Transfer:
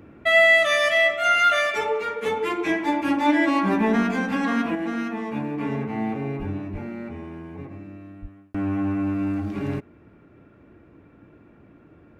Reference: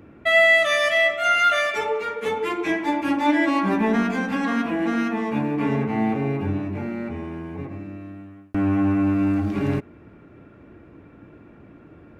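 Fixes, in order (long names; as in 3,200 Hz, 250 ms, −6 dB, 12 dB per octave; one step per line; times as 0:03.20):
0:06.38–0:06.50: high-pass filter 140 Hz 24 dB per octave
0:06.72–0:06.84: high-pass filter 140 Hz 24 dB per octave
0:08.21–0:08.33: high-pass filter 140 Hz 24 dB per octave
level 0 dB, from 0:04.75 +4.5 dB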